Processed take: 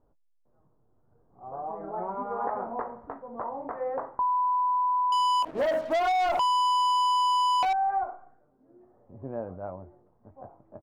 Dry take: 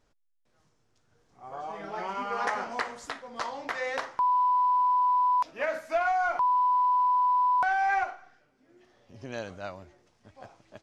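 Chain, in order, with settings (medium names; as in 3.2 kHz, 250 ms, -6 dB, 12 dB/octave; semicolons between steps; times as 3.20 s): low-pass 1 kHz 24 dB/octave; doubling 22 ms -11 dB; 5.12–7.73 s: waveshaping leveller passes 3; compression, threshold -26 dBFS, peak gain reduction 5 dB; trim +2.5 dB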